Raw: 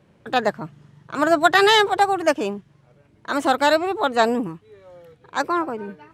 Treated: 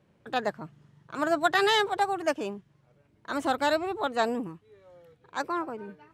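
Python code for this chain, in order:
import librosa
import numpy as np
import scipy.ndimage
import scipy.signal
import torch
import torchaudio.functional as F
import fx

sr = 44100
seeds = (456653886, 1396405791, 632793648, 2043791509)

y = fx.low_shelf(x, sr, hz=99.0, db=12.0, at=(3.3, 4.07))
y = y * librosa.db_to_amplitude(-8.5)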